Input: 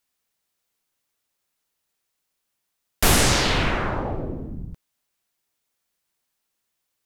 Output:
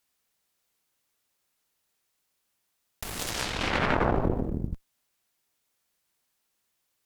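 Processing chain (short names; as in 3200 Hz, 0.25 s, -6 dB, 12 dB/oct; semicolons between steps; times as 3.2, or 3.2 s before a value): added harmonics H 7 -23 dB, 8 -12 dB, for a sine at -4 dBFS; negative-ratio compressor -29 dBFS, ratio -1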